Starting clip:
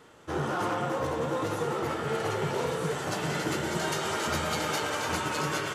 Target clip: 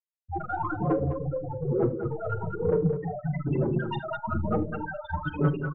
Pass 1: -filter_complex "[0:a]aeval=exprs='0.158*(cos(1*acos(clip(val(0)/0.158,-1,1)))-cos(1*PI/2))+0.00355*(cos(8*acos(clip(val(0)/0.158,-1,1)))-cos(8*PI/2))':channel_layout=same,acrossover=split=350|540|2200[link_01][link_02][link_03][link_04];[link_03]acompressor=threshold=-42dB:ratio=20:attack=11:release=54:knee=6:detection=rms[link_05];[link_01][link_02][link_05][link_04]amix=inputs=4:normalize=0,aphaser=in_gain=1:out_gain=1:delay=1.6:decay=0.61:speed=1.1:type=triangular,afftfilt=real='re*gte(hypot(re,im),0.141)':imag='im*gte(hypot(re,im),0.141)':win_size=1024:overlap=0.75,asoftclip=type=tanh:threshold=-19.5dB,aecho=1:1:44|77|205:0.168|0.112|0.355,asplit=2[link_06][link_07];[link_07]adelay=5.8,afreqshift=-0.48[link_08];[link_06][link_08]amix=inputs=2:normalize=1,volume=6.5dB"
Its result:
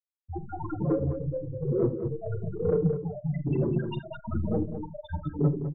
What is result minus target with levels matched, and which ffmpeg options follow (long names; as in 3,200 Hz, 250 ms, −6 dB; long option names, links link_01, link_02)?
downward compressor: peak gain reduction +6 dB
-filter_complex "[0:a]aeval=exprs='0.158*(cos(1*acos(clip(val(0)/0.158,-1,1)))-cos(1*PI/2))+0.00355*(cos(8*acos(clip(val(0)/0.158,-1,1)))-cos(8*PI/2))':channel_layout=same,acrossover=split=350|540|2200[link_01][link_02][link_03][link_04];[link_03]acompressor=threshold=-35.5dB:ratio=20:attack=11:release=54:knee=6:detection=rms[link_05];[link_01][link_02][link_05][link_04]amix=inputs=4:normalize=0,aphaser=in_gain=1:out_gain=1:delay=1.6:decay=0.61:speed=1.1:type=triangular,afftfilt=real='re*gte(hypot(re,im),0.141)':imag='im*gte(hypot(re,im),0.141)':win_size=1024:overlap=0.75,asoftclip=type=tanh:threshold=-19.5dB,aecho=1:1:44|77|205:0.168|0.112|0.355,asplit=2[link_06][link_07];[link_07]adelay=5.8,afreqshift=-0.48[link_08];[link_06][link_08]amix=inputs=2:normalize=1,volume=6.5dB"